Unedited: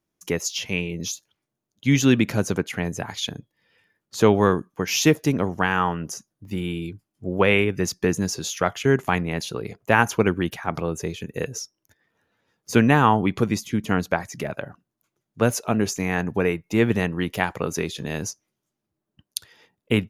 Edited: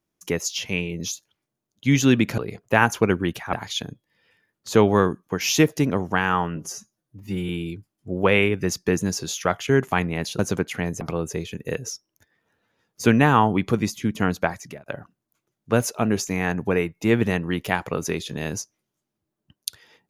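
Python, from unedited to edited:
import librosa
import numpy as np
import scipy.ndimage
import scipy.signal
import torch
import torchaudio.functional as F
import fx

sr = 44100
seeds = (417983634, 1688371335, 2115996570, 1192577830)

y = fx.edit(x, sr, fx.swap(start_s=2.38, length_s=0.62, other_s=9.55, other_length_s=1.15),
    fx.stretch_span(start_s=6.03, length_s=0.62, factor=1.5),
    fx.fade_out_span(start_s=14.22, length_s=0.33), tone=tone)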